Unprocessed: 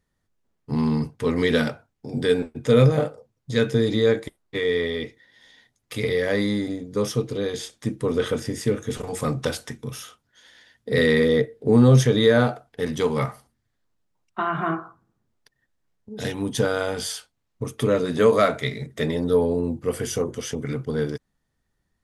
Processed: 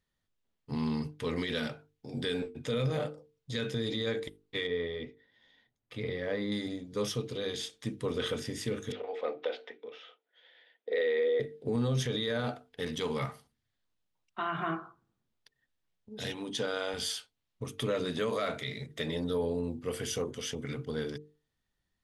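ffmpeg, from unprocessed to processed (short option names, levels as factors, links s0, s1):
-filter_complex "[0:a]asettb=1/sr,asplit=3[s0][s1][s2];[s0]atrim=end=4.674[s3];[s1]atrim=start=4.67:end=6.52,asetpts=PTS-STARTPTS,afade=t=in:d=0.004:c=qsin,afade=t=out:st=1.846:d=0.004:c=qsin,lowpass=f=1000:p=1[s4];[s2]atrim=start=6.516[s5];[s3][s4]acrossfade=d=0.004:c1=hsin:c2=qsin[s6];[s6][s5]acrossfade=d=0.004:c1=qsin:c2=hsin,asettb=1/sr,asplit=3[s7][s8][s9];[s7]atrim=end=8.924[s10];[s8]atrim=start=8.92:end=11.4,asetpts=PTS-STARTPTS,afade=t=in:d=0.004:c=qsin,afade=t=out:st=2.476:d=0.004:c=qsin,highpass=f=360:w=0.5412,highpass=f=360:w=1.3066,equalizer=f=480:t=q:w=4:g=7,equalizer=f=710:t=q:w=4:g=4,equalizer=f=1100:t=q:w=4:g=-7,equalizer=f=1600:t=q:w=4:g=-4,equalizer=f=2800:t=q:w=4:g=-4,lowpass=f=3000:w=0.5412,lowpass=f=3000:w=1.3066[s11];[s9]atrim=start=11.396[s12];[s10][s11]acrossfade=d=0.004:c1=hsin:c2=qsin[s13];[s13][s12]acrossfade=d=0.004:c1=qsin:c2=hsin,asettb=1/sr,asplit=3[s14][s15][s16];[s14]atrim=end=16.334[s17];[s15]atrim=start=16.33:end=16.94,asetpts=PTS-STARTPTS,afade=t=in:d=0.004:c=qsin,afade=t=out:st=0.606:d=0.004:c=qsin,highpass=200,lowpass=8000[s18];[s16]atrim=start=16.936[s19];[s17][s18]acrossfade=d=0.004:c1=hsin:c2=qsin[s20];[s20][s19]acrossfade=d=0.004:c1=qsin:c2=hsin,equalizer=f=3300:w=1.1:g=8,bandreject=f=50:t=h:w=6,bandreject=f=100:t=h:w=6,bandreject=f=150:t=h:w=6,bandreject=f=200:t=h:w=6,bandreject=f=250:t=h:w=6,bandreject=f=300:t=h:w=6,bandreject=f=350:t=h:w=6,bandreject=f=400:t=h:w=6,bandreject=f=450:t=h:w=6,alimiter=limit=0.2:level=0:latency=1:release=42,volume=0.376"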